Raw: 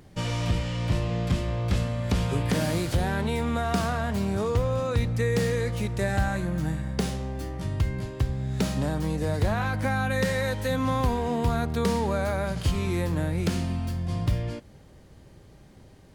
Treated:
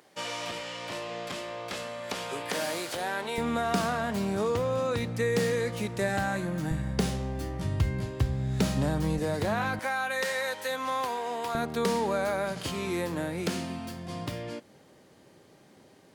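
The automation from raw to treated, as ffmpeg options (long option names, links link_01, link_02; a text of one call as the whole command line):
ffmpeg -i in.wav -af "asetnsamples=nb_out_samples=441:pad=0,asendcmd='3.38 highpass f 180;6.71 highpass f 56;9.19 highpass f 170;9.79 highpass f 610;11.55 highpass f 240',highpass=500" out.wav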